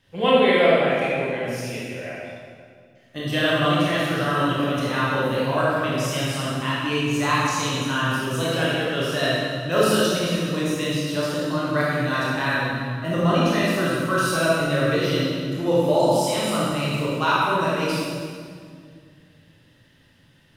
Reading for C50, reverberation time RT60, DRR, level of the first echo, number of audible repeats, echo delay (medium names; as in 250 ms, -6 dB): -3.5 dB, 2.1 s, -7.5 dB, no echo, no echo, no echo